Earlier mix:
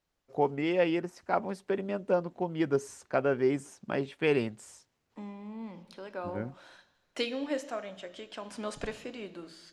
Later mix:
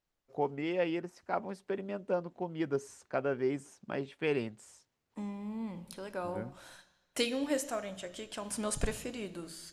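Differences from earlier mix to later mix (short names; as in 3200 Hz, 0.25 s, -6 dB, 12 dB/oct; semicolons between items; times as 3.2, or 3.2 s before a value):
first voice -5.0 dB; second voice: remove three-band isolator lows -12 dB, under 190 Hz, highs -19 dB, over 5500 Hz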